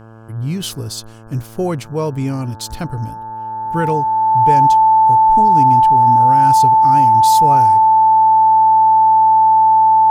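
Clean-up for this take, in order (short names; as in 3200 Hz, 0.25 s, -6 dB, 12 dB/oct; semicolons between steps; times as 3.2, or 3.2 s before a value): de-hum 111.8 Hz, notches 15; notch 880 Hz, Q 30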